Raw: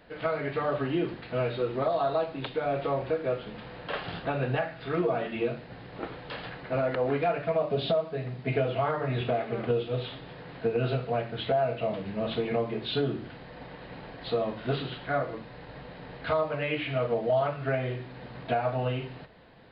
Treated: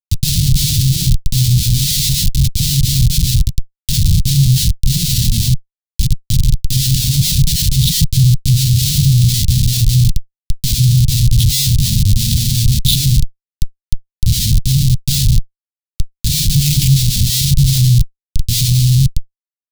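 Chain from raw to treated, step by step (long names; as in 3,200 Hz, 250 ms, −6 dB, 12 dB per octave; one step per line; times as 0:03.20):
comparator with hysteresis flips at −32.5 dBFS
elliptic band-stop filter 140–3,900 Hz, stop band 80 dB
boost into a limiter +28 dB
level −1 dB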